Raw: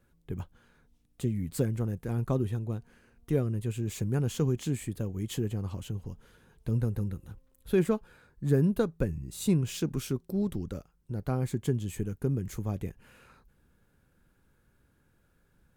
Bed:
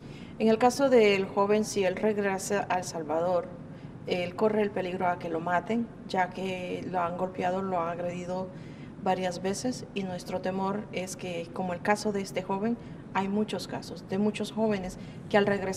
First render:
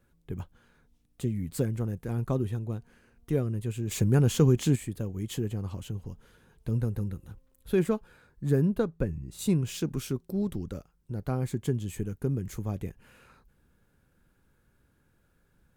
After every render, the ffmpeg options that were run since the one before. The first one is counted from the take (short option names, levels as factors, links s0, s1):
-filter_complex "[0:a]asettb=1/sr,asplit=3[s0][s1][s2];[s0]atrim=end=3.914[s3];[s1]atrim=start=3.91:end=4.76,asetpts=PTS-STARTPTS,afade=t=in:d=0.004:c=qsin,afade=t=out:st=0.846:d=0.004:c=qsin,acontrast=67[s4];[s2]atrim=start=4.756[s5];[s3][s4]acrossfade=d=0.004:c1=hsin:c2=qsin[s6];[s6][s5]acrossfade=d=0.004:c1=qsin:c2=hsin,asettb=1/sr,asplit=3[s7][s8][s9];[s7]atrim=end=8.624[s10];[s8]atrim=start=8.62:end=9.39,asetpts=PTS-STARTPTS,afade=t=in:d=0.004:c=qsin,afade=t=out:st=0.766:d=0.004:c=qsin,highshelf=f=4300:g=-8[s11];[s9]atrim=start=9.386[s12];[s10][s11]acrossfade=d=0.004:c1=hsin:c2=qsin[s13];[s13][s12]acrossfade=d=0.004:c1=qsin:c2=hsin"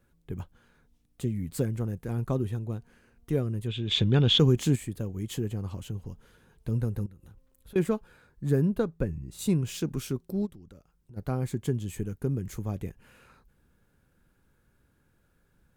-filter_complex "[0:a]asplit=3[s0][s1][s2];[s0]afade=t=out:st=3.67:d=0.02[s3];[s1]lowpass=f=3500:t=q:w=16,afade=t=in:st=3.67:d=0.02,afade=t=out:st=4.38:d=0.02[s4];[s2]afade=t=in:st=4.38:d=0.02[s5];[s3][s4][s5]amix=inputs=3:normalize=0,asettb=1/sr,asplit=3[s6][s7][s8];[s6]atrim=end=7.064[s9];[s7]atrim=start=7.06:end=7.76,asetpts=PTS-STARTPTS,afade=t=in:d=0.004:c=qsin,afade=t=out:st=0.696:d=0.004:c=qsin,acompressor=threshold=0.00447:ratio=6:attack=3.2:release=140:knee=1:detection=peak[s10];[s8]atrim=start=7.756[s11];[s9][s10]acrossfade=d=0.004:c1=hsin:c2=qsin[s12];[s12][s11]acrossfade=d=0.004:c1=qsin:c2=hsin,asplit=3[s13][s14][s15];[s13]afade=t=out:st=10.45:d=0.02[s16];[s14]acompressor=threshold=0.00224:ratio=2.5:attack=3.2:release=140:knee=1:detection=peak,afade=t=in:st=10.45:d=0.02,afade=t=out:st=11.16:d=0.02[s17];[s15]afade=t=in:st=11.16:d=0.02[s18];[s16][s17][s18]amix=inputs=3:normalize=0"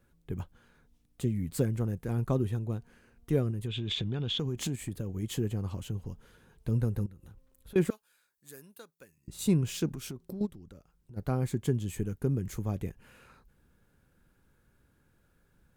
-filter_complex "[0:a]asettb=1/sr,asplit=3[s0][s1][s2];[s0]atrim=end=3.504[s3];[s1]atrim=start=3.5:end=5.23,asetpts=PTS-STARTPTS,afade=t=in:d=0.004:c=qsin,afade=t=out:st=1.726:d=0.004:c=qsin,acompressor=threshold=0.0355:ratio=6:attack=3.2:release=140:knee=1:detection=peak[s4];[s2]atrim=start=5.226[s5];[s3][s4]acrossfade=d=0.004:c1=hsin:c2=qsin[s6];[s6][s5]acrossfade=d=0.004:c1=qsin:c2=hsin,asettb=1/sr,asplit=3[s7][s8][s9];[s7]atrim=end=7.904[s10];[s8]atrim=start=7.9:end=9.28,asetpts=PTS-STARTPTS,afade=t=in:d=0.004:c=qsin,afade=t=out:st=1.376:d=0.004:c=qsin,aderivative[s11];[s9]atrim=start=9.276[s12];[s10][s11]acrossfade=d=0.004:c1=hsin:c2=qsin[s13];[s13][s12]acrossfade=d=0.004:c1=qsin:c2=hsin,asettb=1/sr,asplit=3[s14][s15][s16];[s14]atrim=end=9.934[s17];[s15]atrim=start=9.93:end=10.41,asetpts=PTS-STARTPTS,afade=t=in:d=0.004:c=qsin,afade=t=out:st=0.476:d=0.004:c=qsin,acompressor=threshold=0.0178:ratio=12:attack=3.2:release=140:knee=1:detection=peak[s18];[s16]atrim=start=10.406[s19];[s17][s18]acrossfade=d=0.004:c1=hsin:c2=qsin[s20];[s20][s19]acrossfade=d=0.004:c1=qsin:c2=hsin"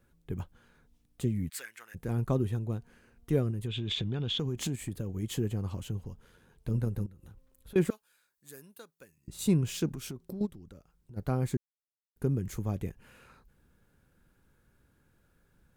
-filter_complex "[0:a]asplit=3[s0][s1][s2];[s0]afade=t=out:st=1.48:d=0.02[s3];[s1]highpass=f=1800:t=q:w=2.4,afade=t=in:st=1.48:d=0.02,afade=t=out:st=1.94:d=0.02[s4];[s2]afade=t=in:st=1.94:d=0.02[s5];[s3][s4][s5]amix=inputs=3:normalize=0,asplit=3[s6][s7][s8];[s6]afade=t=out:st=6.03:d=0.02[s9];[s7]tremolo=f=86:d=0.4,afade=t=in:st=6.03:d=0.02,afade=t=out:st=7.17:d=0.02[s10];[s8]afade=t=in:st=7.17:d=0.02[s11];[s9][s10][s11]amix=inputs=3:normalize=0,asplit=3[s12][s13][s14];[s12]atrim=end=11.57,asetpts=PTS-STARTPTS,afade=t=out:st=11.566:d=0.004:c=hsin[s15];[s13]atrim=start=11.57:end=12.16,asetpts=PTS-STARTPTS,volume=0[s16];[s14]atrim=start=12.16,asetpts=PTS-STARTPTS,afade=t=in:d=0.004:c=hsin[s17];[s15][s16][s17]concat=n=3:v=0:a=1"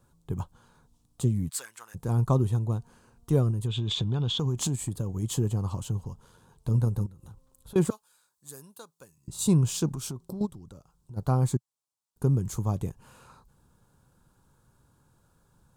-af "equalizer=f=125:t=o:w=1:g=7,equalizer=f=1000:t=o:w=1:g=12,equalizer=f=2000:t=o:w=1:g=-10,equalizer=f=4000:t=o:w=1:g=4,equalizer=f=8000:t=o:w=1:g=9"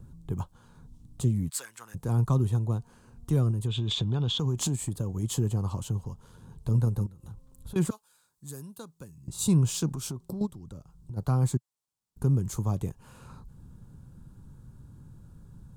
-filter_complex "[0:a]acrossover=split=270|1100|3400[s0][s1][s2][s3];[s0]acompressor=mode=upward:threshold=0.0224:ratio=2.5[s4];[s1]alimiter=level_in=1.78:limit=0.0631:level=0:latency=1,volume=0.562[s5];[s4][s5][s2][s3]amix=inputs=4:normalize=0"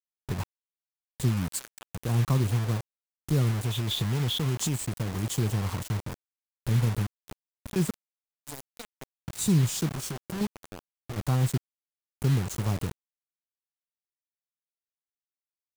-af "acrusher=bits=5:mix=0:aa=0.000001"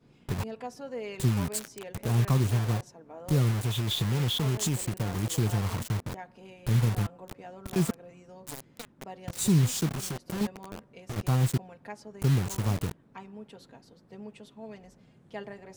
-filter_complex "[1:a]volume=0.15[s0];[0:a][s0]amix=inputs=2:normalize=0"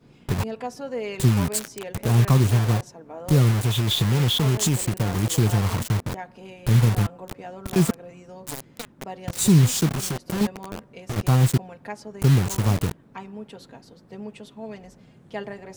-af "volume=2.24"